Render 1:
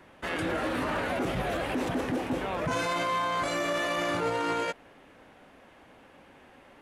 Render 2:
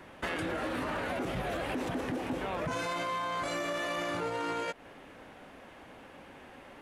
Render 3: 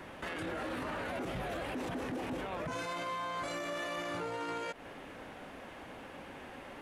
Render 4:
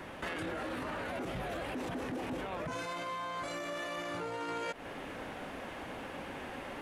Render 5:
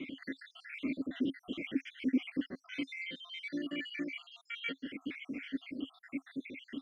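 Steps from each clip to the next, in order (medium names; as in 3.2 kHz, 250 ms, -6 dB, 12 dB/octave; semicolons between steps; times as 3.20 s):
compression 6:1, threshold -35 dBFS, peak gain reduction 10 dB; trim +3.5 dB
peak limiter -33.5 dBFS, peak gain reduction 10.5 dB; trim +3 dB
gain riding within 4 dB 0.5 s; trim +1 dB
random holes in the spectrogram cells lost 74%; vowel filter i; trim +17 dB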